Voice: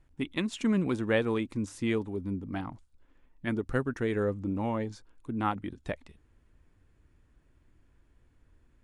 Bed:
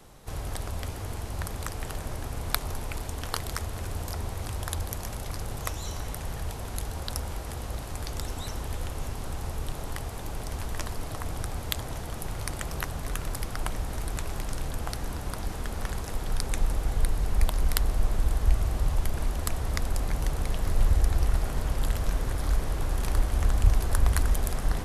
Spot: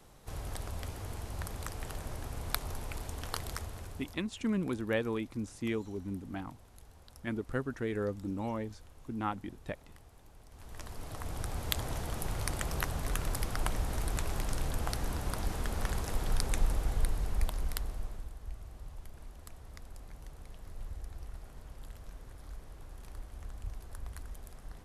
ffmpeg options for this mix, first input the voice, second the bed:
-filter_complex "[0:a]adelay=3800,volume=0.562[s0];[1:a]volume=5.62,afade=t=out:st=3.48:d=0.76:silence=0.149624,afade=t=in:st=10.51:d=1.36:silence=0.0891251,afade=t=out:st=16.26:d=2.06:silence=0.112202[s1];[s0][s1]amix=inputs=2:normalize=0"

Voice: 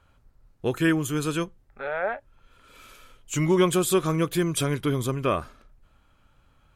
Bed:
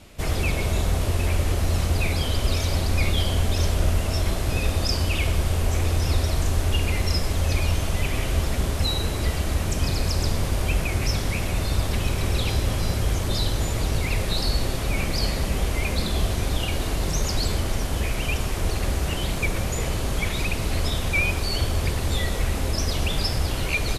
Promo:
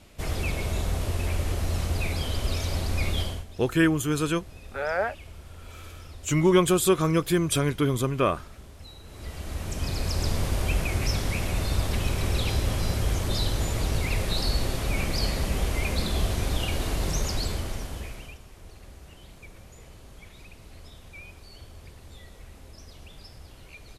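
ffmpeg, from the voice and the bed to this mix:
-filter_complex "[0:a]adelay=2950,volume=1.12[s0];[1:a]volume=5.31,afade=t=out:st=3.2:d=0.25:silence=0.141254,afade=t=in:st=9.04:d=1.32:silence=0.105925,afade=t=out:st=17.1:d=1.29:silence=0.1[s1];[s0][s1]amix=inputs=2:normalize=0"

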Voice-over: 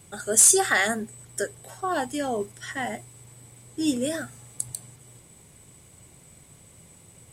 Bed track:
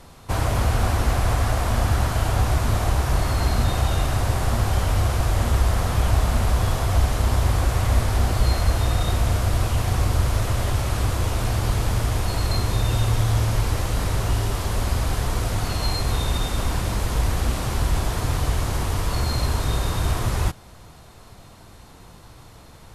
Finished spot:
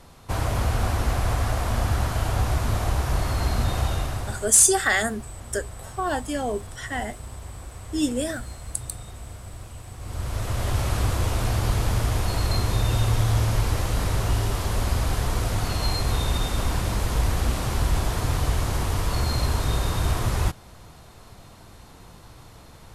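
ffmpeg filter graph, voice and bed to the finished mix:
-filter_complex "[0:a]adelay=4150,volume=1.06[s0];[1:a]volume=5.31,afade=t=out:st=3.85:d=0.69:silence=0.16788,afade=t=in:st=9.99:d=0.83:silence=0.133352[s1];[s0][s1]amix=inputs=2:normalize=0"

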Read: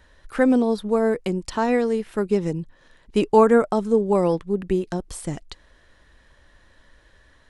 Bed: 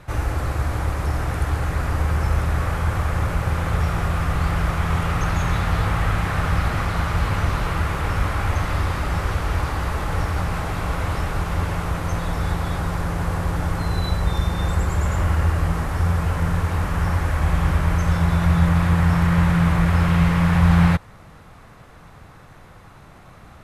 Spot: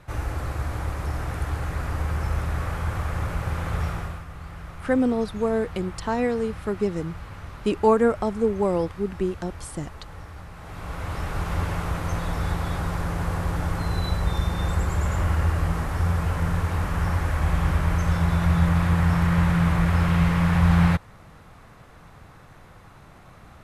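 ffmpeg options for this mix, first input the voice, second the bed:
-filter_complex "[0:a]adelay=4500,volume=0.668[s0];[1:a]volume=2.82,afade=t=out:st=3.86:d=0.38:silence=0.251189,afade=t=in:st=10.56:d=0.96:silence=0.188365[s1];[s0][s1]amix=inputs=2:normalize=0"

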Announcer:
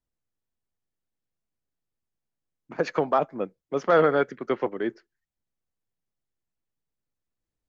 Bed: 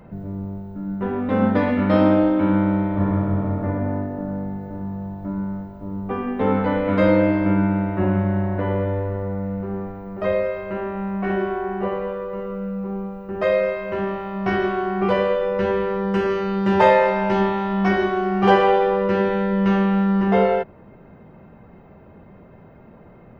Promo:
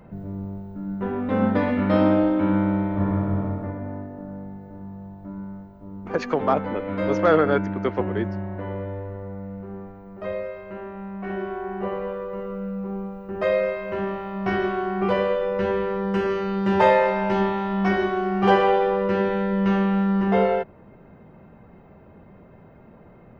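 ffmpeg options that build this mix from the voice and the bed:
-filter_complex "[0:a]adelay=3350,volume=1.12[s0];[1:a]volume=1.5,afade=t=out:st=3.41:d=0.34:silence=0.501187,afade=t=in:st=11.18:d=0.93:silence=0.501187[s1];[s0][s1]amix=inputs=2:normalize=0"

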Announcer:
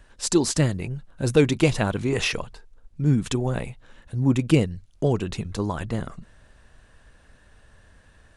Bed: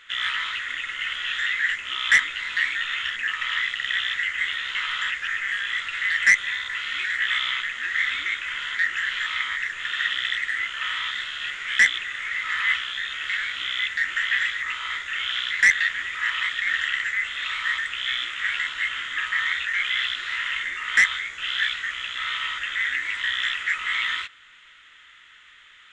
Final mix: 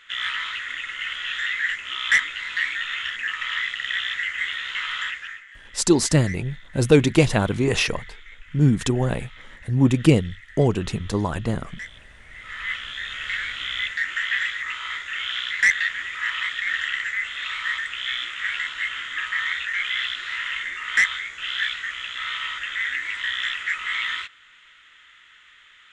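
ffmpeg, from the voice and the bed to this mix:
-filter_complex "[0:a]adelay=5550,volume=1.41[s0];[1:a]volume=7.94,afade=t=out:st=5.01:d=0.44:silence=0.112202,afade=t=in:st=12.27:d=0.89:silence=0.112202[s1];[s0][s1]amix=inputs=2:normalize=0"

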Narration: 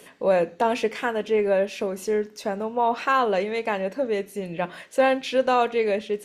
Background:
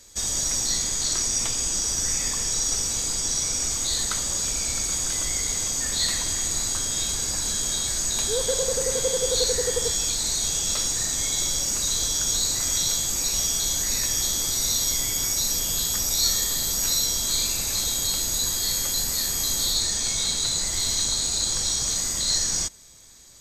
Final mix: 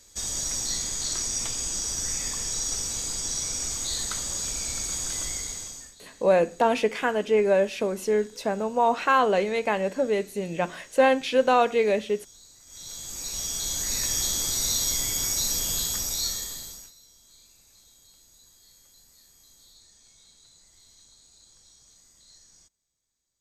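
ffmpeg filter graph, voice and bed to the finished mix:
-filter_complex "[0:a]adelay=6000,volume=1.06[s0];[1:a]volume=11.9,afade=t=out:st=5.24:d=0.71:silence=0.0668344,afade=t=in:st=12.66:d=1.47:silence=0.0501187,afade=t=out:st=15.73:d=1.19:silence=0.0334965[s1];[s0][s1]amix=inputs=2:normalize=0"

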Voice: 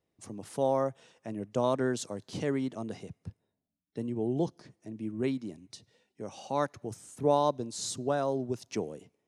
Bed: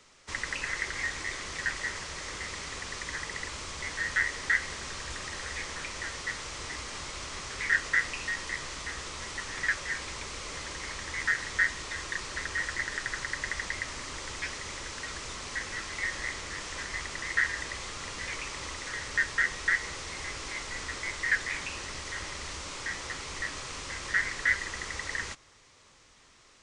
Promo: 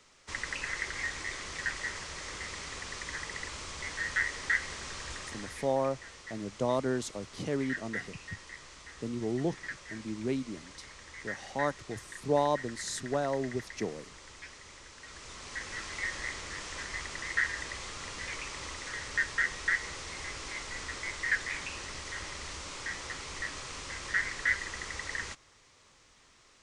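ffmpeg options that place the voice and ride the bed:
-filter_complex "[0:a]adelay=5050,volume=0.841[s0];[1:a]volume=2.24,afade=t=out:st=5.11:d=0.61:silence=0.334965,afade=t=in:st=14.99:d=0.85:silence=0.334965[s1];[s0][s1]amix=inputs=2:normalize=0"

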